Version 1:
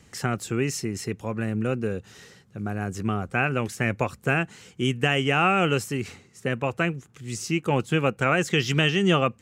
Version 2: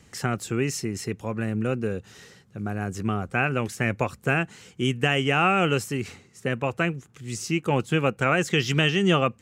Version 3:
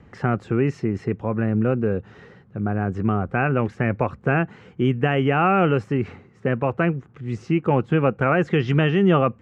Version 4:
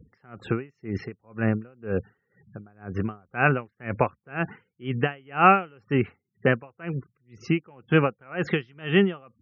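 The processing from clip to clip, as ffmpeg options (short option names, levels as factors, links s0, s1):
-af anull
-filter_complex "[0:a]lowpass=1500,asplit=2[s0][s1];[s1]alimiter=limit=0.119:level=0:latency=1,volume=1.12[s2];[s0][s2]amix=inputs=2:normalize=0"
-af "tiltshelf=f=740:g=-4,afftfilt=real='re*gte(hypot(re,im),0.00708)':imag='im*gte(hypot(re,im),0.00708)':win_size=1024:overlap=0.75,aeval=exprs='val(0)*pow(10,-35*(0.5-0.5*cos(2*PI*2*n/s))/20)':c=same,volume=1.58"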